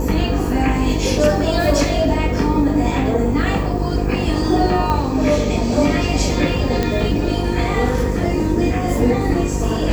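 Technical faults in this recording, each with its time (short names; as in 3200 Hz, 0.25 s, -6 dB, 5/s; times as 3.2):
buzz 50 Hz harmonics 10 -22 dBFS
4.9 pop -8 dBFS
6.83 pop -6 dBFS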